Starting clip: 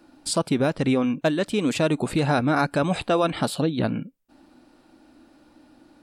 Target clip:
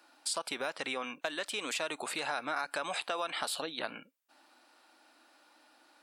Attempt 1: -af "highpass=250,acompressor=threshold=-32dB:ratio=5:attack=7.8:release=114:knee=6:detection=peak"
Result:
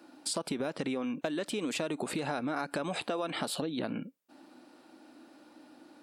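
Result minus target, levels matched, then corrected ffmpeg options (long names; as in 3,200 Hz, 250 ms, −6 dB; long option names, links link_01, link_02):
250 Hz band +11.0 dB
-af "highpass=910,acompressor=threshold=-32dB:ratio=5:attack=7.8:release=114:knee=6:detection=peak"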